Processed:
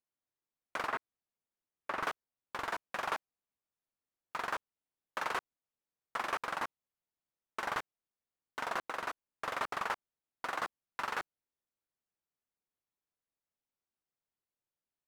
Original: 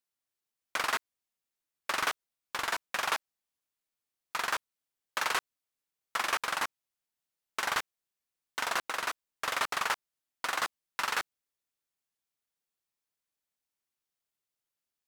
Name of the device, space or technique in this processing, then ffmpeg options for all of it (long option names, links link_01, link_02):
through cloth: -filter_complex "[0:a]highshelf=frequency=2000:gain=-14.5,asettb=1/sr,asplit=3[link_01][link_02][link_03];[link_01]atrim=end=0.874[link_04];[link_02]atrim=start=0.87:end=2.03,asetpts=PTS-STARTPTS,afade=type=in:duration=0.004:curve=qsin,afade=type=out:start_time=1.156:duration=0.004:curve=qsin,acrossover=split=2900[link_05][link_06];[link_06]acompressor=threshold=-55dB:ratio=4:attack=1:release=60[link_07];[link_05][link_07]amix=inputs=2:normalize=0[link_08];[link_03]atrim=start=2.026[link_09];[link_04][link_08]acrossfade=duration=0.004:curve1=hsin:curve2=qsin[link_10];[link_10][link_09]acrossfade=duration=0.004:curve1=qsin:curve2=hsin"